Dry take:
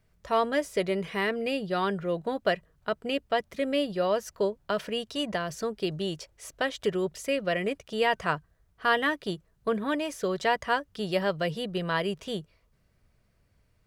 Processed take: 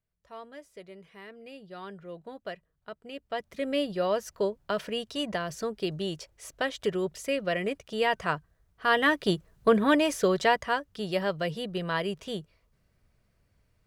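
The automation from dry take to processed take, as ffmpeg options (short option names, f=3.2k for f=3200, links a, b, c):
-af "volume=6.5dB,afade=t=in:st=1.23:d=0.92:silence=0.473151,afade=t=in:st=3.12:d=0.66:silence=0.266073,afade=t=in:st=8.86:d=0.44:silence=0.421697,afade=t=out:st=10.1:d=0.61:silence=0.398107"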